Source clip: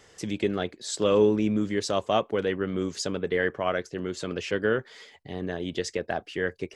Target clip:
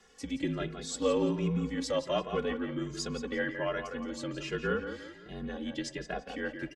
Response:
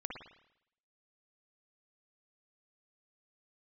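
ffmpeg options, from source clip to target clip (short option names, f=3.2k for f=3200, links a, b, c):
-filter_complex "[0:a]aecho=1:1:3.5:0.52,afreqshift=-40,asplit=2[a][b];[b]adelay=171,lowpass=f=4.6k:p=1,volume=-7.5dB,asplit=2[c][d];[d]adelay=171,lowpass=f=4.6k:p=1,volume=0.45,asplit=2[e][f];[f]adelay=171,lowpass=f=4.6k:p=1,volume=0.45,asplit=2[g][h];[h]adelay=171,lowpass=f=4.6k:p=1,volume=0.45,asplit=2[i][j];[j]adelay=171,lowpass=f=4.6k:p=1,volume=0.45[k];[a][c][e][g][i][k]amix=inputs=6:normalize=0,asplit=2[l][m];[1:a]atrim=start_sample=2205[n];[m][n]afir=irnorm=-1:irlink=0,volume=-14dB[o];[l][o]amix=inputs=2:normalize=0,asplit=2[p][q];[q]adelay=2.4,afreqshift=1.3[r];[p][r]amix=inputs=2:normalize=1,volume=-5dB"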